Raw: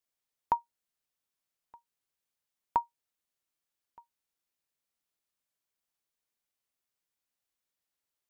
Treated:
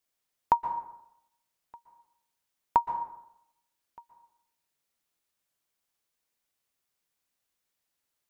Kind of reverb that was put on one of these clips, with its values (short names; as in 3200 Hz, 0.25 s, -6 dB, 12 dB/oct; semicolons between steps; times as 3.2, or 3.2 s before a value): plate-style reverb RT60 0.8 s, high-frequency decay 0.6×, pre-delay 0.11 s, DRR 9 dB; gain +5 dB